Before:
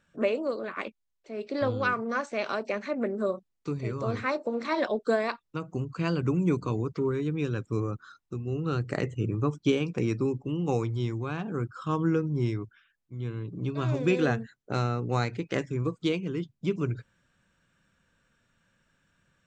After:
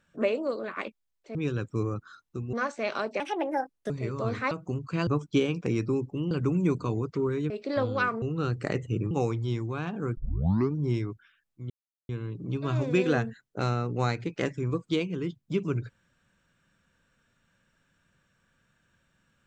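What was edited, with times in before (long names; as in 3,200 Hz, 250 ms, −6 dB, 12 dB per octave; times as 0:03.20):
0:01.35–0:02.07: swap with 0:07.32–0:08.50
0:02.74–0:03.72: play speed 140%
0:04.33–0:05.57: remove
0:09.39–0:10.63: move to 0:06.13
0:11.69: tape start 0.58 s
0:13.22: splice in silence 0.39 s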